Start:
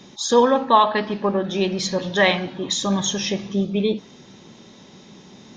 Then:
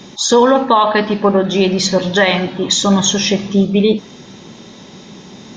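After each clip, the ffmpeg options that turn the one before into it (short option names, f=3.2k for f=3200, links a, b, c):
-af "alimiter=level_in=10dB:limit=-1dB:release=50:level=0:latency=1,volume=-1dB"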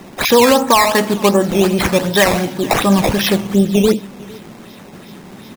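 -af "acrusher=samples=10:mix=1:aa=0.000001:lfo=1:lforange=10:lforate=2.7,aecho=1:1:458:0.075"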